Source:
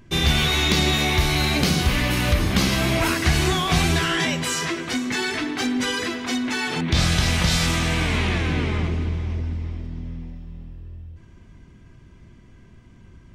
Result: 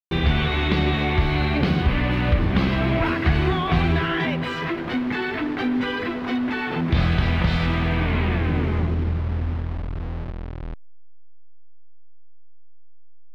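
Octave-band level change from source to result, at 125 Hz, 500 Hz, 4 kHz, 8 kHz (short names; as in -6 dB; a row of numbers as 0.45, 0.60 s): +1.0 dB, +0.5 dB, -8.5 dB, under -25 dB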